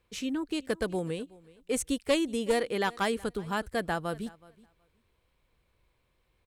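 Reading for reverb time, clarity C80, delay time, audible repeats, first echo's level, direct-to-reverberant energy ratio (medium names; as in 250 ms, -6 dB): no reverb, no reverb, 372 ms, 1, -22.5 dB, no reverb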